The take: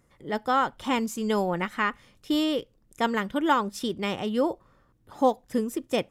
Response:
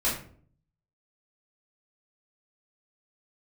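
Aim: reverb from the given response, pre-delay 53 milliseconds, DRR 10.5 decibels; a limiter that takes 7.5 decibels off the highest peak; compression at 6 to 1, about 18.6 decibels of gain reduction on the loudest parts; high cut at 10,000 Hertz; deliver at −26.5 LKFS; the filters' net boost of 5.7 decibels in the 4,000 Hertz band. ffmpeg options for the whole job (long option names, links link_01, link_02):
-filter_complex "[0:a]lowpass=10000,equalizer=frequency=4000:width_type=o:gain=8,acompressor=threshold=-37dB:ratio=6,alimiter=level_in=7.5dB:limit=-24dB:level=0:latency=1,volume=-7.5dB,asplit=2[link_01][link_02];[1:a]atrim=start_sample=2205,adelay=53[link_03];[link_02][link_03]afir=irnorm=-1:irlink=0,volume=-20.5dB[link_04];[link_01][link_04]amix=inputs=2:normalize=0,volume=15.5dB"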